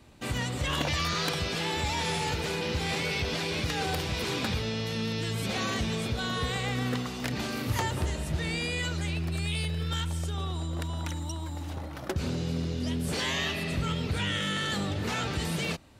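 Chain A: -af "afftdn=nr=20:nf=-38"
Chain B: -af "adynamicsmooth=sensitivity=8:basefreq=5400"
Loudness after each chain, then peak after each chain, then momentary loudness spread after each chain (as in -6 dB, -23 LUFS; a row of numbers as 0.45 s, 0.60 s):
-31.5 LUFS, -31.0 LUFS; -19.0 dBFS, -19.5 dBFS; 5 LU, 5 LU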